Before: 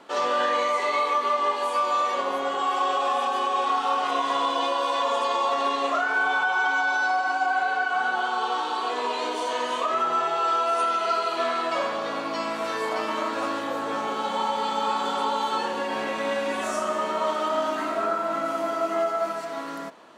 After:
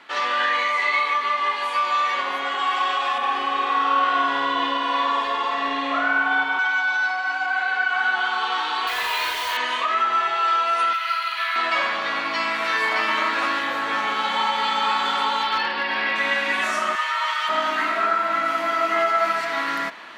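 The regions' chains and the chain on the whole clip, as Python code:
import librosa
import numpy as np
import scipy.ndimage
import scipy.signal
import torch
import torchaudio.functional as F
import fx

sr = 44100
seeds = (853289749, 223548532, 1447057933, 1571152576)

y = fx.chain(x, sr, fx.tilt_eq(slope=-2.5),
    fx.room_flutter(wall_m=8.7, rt60_s=1.2), at=(3.18, 6.59))
y = fx.chain(y, sr, fx.highpass(hz=680.0, slope=6),
    fx.quant_dither(seeds[0], bits=6, dither='none'),
    fx.doubler(ms=43.0, db=-5.5), at=(8.87, 9.57))
y = fx.chain(y, sr, fx.highpass(hz=1300.0, slope=12),
    fx.resample_linear(factor=3), at=(10.93, 11.56))
y = fx.chain(y, sr, fx.resample_bad(factor=4, down='none', up='filtered'),
    fx.hum_notches(base_hz=50, count=9),
    fx.overload_stage(gain_db=21.5), at=(15.43, 16.16))
y = fx.chain(y, sr, fx.highpass(hz=1200.0, slope=12),
    fx.comb(ms=7.5, depth=0.67), at=(16.95, 17.49))
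y = fx.graphic_eq_10(y, sr, hz=(125, 250, 500, 2000, 4000, 8000), db=(-6, -3, -8, 11, 4, -5))
y = fx.rider(y, sr, range_db=10, speed_s=2.0)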